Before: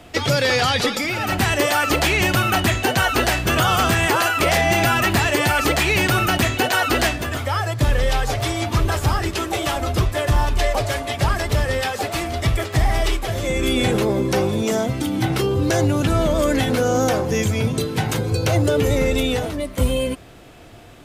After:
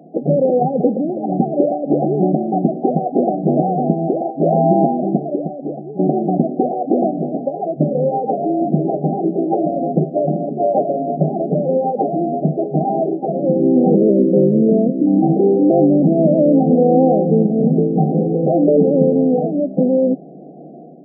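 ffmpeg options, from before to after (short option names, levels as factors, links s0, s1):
-filter_complex "[0:a]asettb=1/sr,asplit=3[s0][s1][s2];[s0]atrim=end=13.954[s3];[s1]atrim=start=13.95:end=15.07,asetpts=PTS-STARTPTS,afade=t=in:d=0.004:c=qsin,afade=t=out:st=1.116:d=0.004:c=qsin,asuperstop=centerf=1100:order=12:qfactor=0.88[s4];[s2]atrim=start=15.066[s5];[s3][s4]acrossfade=d=0.004:c1=hsin:c2=qsin[s6];[s6][s5]acrossfade=d=0.004:c1=qsin:c2=hsin,asplit=2[s7][s8];[s7]atrim=end=5.99,asetpts=PTS-STARTPTS,afade=t=out:st=4.82:d=1.17:c=qua:silence=0.199526[s9];[s8]atrim=start=5.99,asetpts=PTS-STARTPTS,afade=t=in:d=0.004:c=hsin:silence=0.199526[s10];[s9][s10]concat=n=2:v=0:a=1,afftfilt=real='re*between(b*sr/4096,140,810)':imag='im*between(b*sr/4096,140,810)':win_size=4096:overlap=0.75,lowshelf=f=320:g=9,dynaudnorm=f=230:g=3:m=2"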